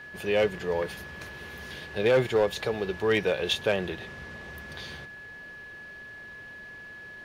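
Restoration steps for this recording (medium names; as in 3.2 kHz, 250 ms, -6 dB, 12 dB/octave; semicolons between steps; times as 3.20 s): clip repair -16.5 dBFS; band-stop 1.7 kHz, Q 30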